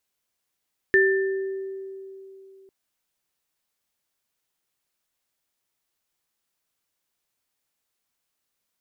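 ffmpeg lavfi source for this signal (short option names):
-f lavfi -i "aevalsrc='0.15*pow(10,-3*t/3.18)*sin(2*PI*386*t)+0.188*pow(10,-3*t/1.01)*sin(2*PI*1780*t)':d=1.75:s=44100"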